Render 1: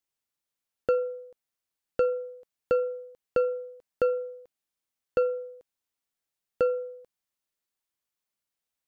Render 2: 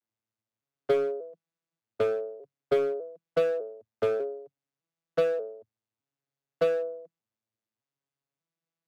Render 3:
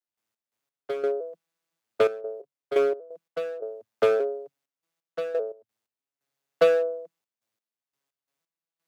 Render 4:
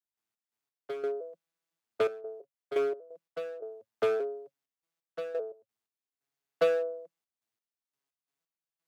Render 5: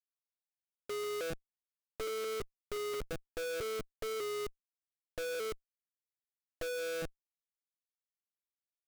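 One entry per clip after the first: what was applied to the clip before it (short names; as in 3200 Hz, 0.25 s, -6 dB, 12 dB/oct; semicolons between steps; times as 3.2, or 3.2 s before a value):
arpeggiated vocoder major triad, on A2, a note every 0.599 s; in parallel at -5 dB: wavefolder -30 dBFS
HPF 450 Hz 6 dB/oct; step gate ".x.x..xxxxxx.x." 87 bpm -12 dB; gain +8.5 dB
notch 550 Hz, Q 15; gain -6 dB
band-pass 360 Hz, Q 2.8; Schmitt trigger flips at -51.5 dBFS; gain +3.5 dB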